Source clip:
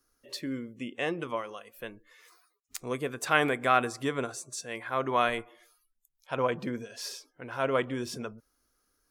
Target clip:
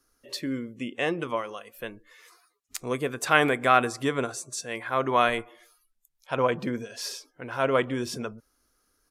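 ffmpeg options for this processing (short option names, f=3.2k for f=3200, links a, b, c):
-af "aresample=32000,aresample=44100,volume=4dB"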